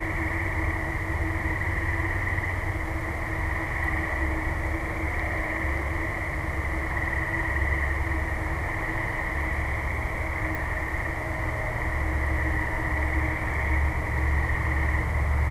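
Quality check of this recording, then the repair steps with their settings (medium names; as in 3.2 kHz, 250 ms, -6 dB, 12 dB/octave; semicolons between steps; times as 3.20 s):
10.55 s: pop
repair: de-click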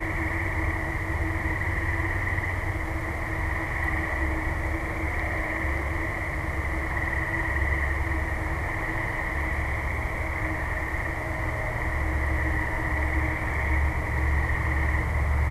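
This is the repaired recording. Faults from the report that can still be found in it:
10.55 s: pop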